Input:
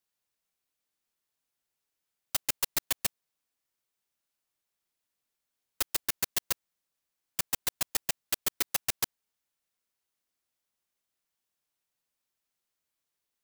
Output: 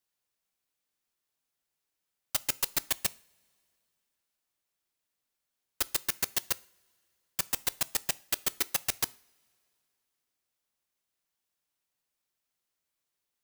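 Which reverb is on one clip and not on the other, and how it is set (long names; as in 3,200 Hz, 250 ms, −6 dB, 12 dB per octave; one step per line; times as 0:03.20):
coupled-rooms reverb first 0.43 s, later 2.7 s, from −22 dB, DRR 17.5 dB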